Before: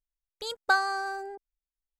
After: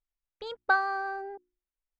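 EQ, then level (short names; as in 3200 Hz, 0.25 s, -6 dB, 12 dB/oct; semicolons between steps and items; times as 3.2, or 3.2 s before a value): LPF 2800 Hz 12 dB/oct; air absorption 63 m; notches 60/120/180/240/300/360 Hz; 0.0 dB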